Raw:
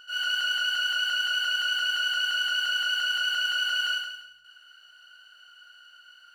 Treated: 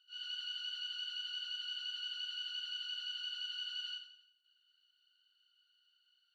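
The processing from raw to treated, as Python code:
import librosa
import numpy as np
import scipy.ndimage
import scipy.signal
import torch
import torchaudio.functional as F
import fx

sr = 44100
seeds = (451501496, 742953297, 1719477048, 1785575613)

y = fx.bandpass_q(x, sr, hz=3700.0, q=7.2)
y = fx.upward_expand(y, sr, threshold_db=-52.0, expansion=1.5)
y = y * 10.0 ** (-1.0 / 20.0)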